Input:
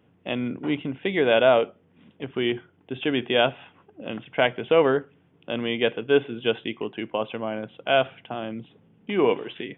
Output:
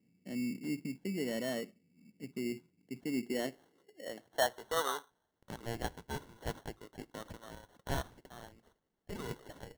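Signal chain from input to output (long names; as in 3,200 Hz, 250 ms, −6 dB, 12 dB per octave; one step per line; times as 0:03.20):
band-pass filter sweep 210 Hz → 2,400 Hz, 0:03.10–0:05.54
decimation without filtering 18×
level −5 dB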